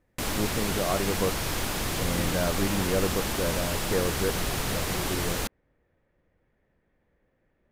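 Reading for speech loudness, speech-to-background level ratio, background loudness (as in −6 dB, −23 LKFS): −31.5 LKFS, −2.0 dB, −29.5 LKFS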